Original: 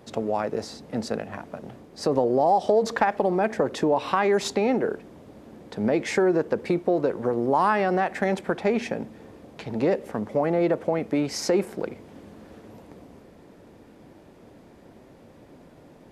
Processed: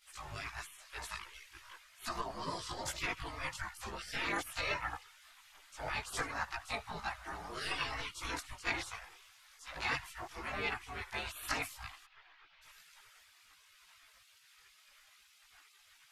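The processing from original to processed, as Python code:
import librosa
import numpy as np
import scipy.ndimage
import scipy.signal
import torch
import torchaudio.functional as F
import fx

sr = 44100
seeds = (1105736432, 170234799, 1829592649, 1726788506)

y = fx.doubler(x, sr, ms=15.0, db=-5.0)
y = y + 10.0 ** (-22.5 / 20.0) * np.pad(y, (int(82 * sr / 1000.0), 0))[:len(y)]
y = fx.spec_gate(y, sr, threshold_db=-25, keep='weak')
y = fx.chorus_voices(y, sr, voices=6, hz=0.42, base_ms=19, depth_ms=1.7, mix_pct=60)
y = fx.gaussian_blur(y, sr, sigma=2.5, at=(12.05, 12.61), fade=0.02)
y = y * 10.0 ** (6.0 / 20.0)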